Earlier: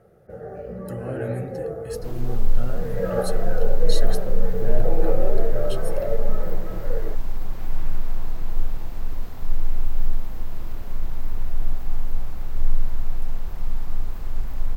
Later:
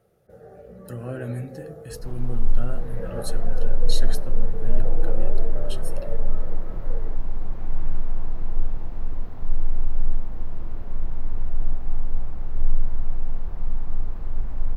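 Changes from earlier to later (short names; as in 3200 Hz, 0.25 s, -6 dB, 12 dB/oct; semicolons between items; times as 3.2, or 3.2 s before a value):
first sound -9.5 dB; second sound: add LPF 1100 Hz 6 dB/oct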